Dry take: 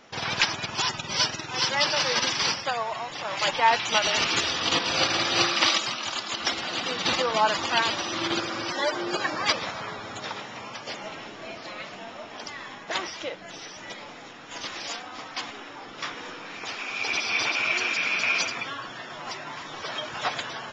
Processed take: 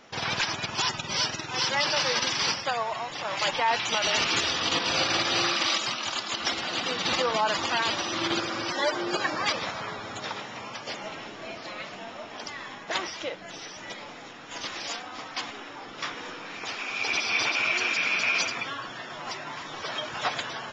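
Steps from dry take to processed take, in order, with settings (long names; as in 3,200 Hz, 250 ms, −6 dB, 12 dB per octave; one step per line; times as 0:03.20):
brickwall limiter −15 dBFS, peak gain reduction 10.5 dB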